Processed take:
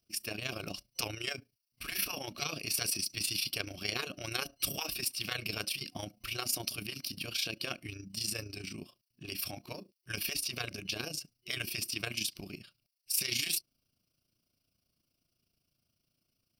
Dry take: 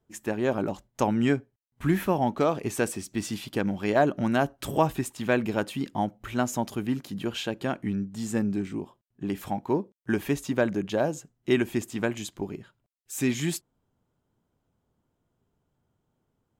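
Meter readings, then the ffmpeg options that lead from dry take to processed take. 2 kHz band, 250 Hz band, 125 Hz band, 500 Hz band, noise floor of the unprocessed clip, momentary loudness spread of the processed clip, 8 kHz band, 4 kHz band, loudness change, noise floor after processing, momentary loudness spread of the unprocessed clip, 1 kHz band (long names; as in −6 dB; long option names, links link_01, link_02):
−4.5 dB, −19.5 dB, −13.0 dB, −18.0 dB, −78 dBFS, 10 LU, +3.0 dB, +6.0 dB, −7.0 dB, −83 dBFS, 9 LU, −16.0 dB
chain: -af "aexciter=amount=5.3:drive=3.4:freq=2900,superequalizer=7b=0.562:9b=0.282:12b=3.16:14b=3.16:15b=0.251,afftfilt=real='re*lt(hypot(re,im),0.224)':imag='im*lt(hypot(re,im),0.224)':win_size=1024:overlap=0.75,tremolo=f=28:d=0.667,volume=-5dB"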